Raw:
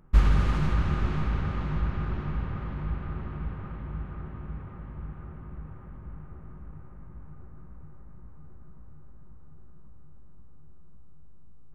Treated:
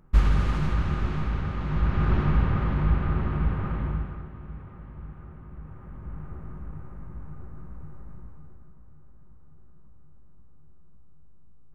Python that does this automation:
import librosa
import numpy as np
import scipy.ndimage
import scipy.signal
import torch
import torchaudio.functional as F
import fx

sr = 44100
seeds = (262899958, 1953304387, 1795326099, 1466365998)

y = fx.gain(x, sr, db=fx.line((1.58, 0.0), (2.14, 9.0), (3.85, 9.0), (4.29, -2.0), (5.51, -2.0), (6.26, 5.5), (8.13, 5.5), (8.76, -3.0)))